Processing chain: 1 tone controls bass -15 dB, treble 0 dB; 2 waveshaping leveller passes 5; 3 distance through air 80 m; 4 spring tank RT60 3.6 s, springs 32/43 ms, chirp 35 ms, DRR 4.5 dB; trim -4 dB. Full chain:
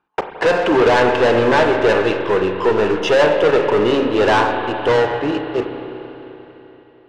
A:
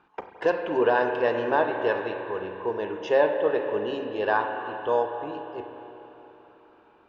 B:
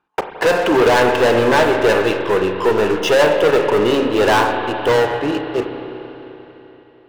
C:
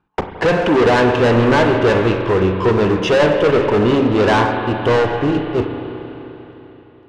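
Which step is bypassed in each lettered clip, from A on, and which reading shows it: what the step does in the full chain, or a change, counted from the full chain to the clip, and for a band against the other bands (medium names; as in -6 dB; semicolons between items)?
2, 125 Hz band -6.5 dB; 3, 4 kHz band +1.5 dB; 1, 125 Hz band +9.0 dB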